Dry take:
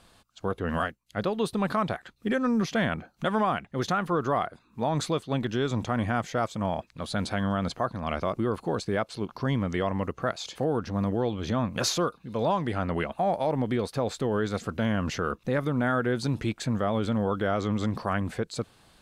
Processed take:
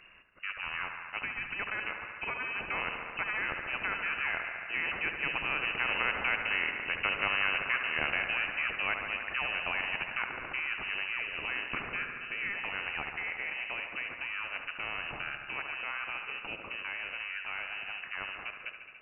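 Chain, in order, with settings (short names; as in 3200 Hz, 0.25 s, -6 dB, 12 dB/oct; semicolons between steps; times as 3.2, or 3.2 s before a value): Doppler pass-by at 7.1, 6 m/s, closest 7.9 m; de-hum 374 Hz, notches 37; inverted band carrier 2800 Hz; on a send: dark delay 71 ms, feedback 74%, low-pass 1900 Hz, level -10 dB; on the sum: spectral compressor 2:1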